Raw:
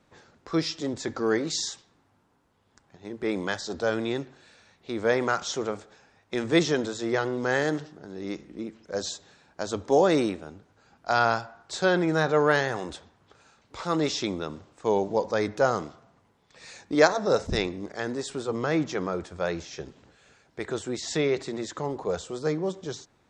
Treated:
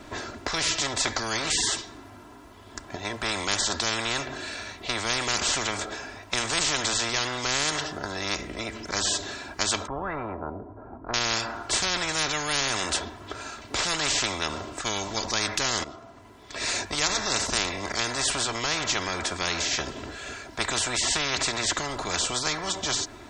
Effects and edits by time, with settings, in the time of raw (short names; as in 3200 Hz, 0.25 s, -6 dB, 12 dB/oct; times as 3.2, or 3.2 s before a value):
9.87–11.14 LPF 1000 Hz 24 dB/oct
15.84–16.7 fade in, from -17.5 dB
whole clip: comb 3 ms, depth 68%; spectral compressor 10:1; gain -5 dB